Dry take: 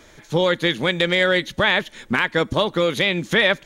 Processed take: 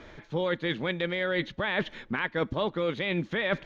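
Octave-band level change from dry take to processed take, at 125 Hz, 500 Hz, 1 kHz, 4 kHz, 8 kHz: -7.5 dB, -9.0 dB, -10.0 dB, -14.0 dB, under -20 dB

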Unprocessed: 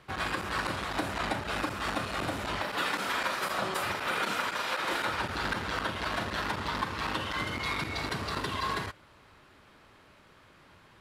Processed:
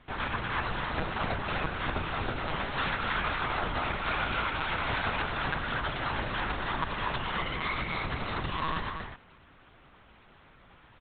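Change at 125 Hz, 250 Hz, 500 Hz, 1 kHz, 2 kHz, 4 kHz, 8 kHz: +3.5 dB, -0.5 dB, -1.0 dB, +0.5 dB, +0.5 dB, -1.5 dB, under -35 dB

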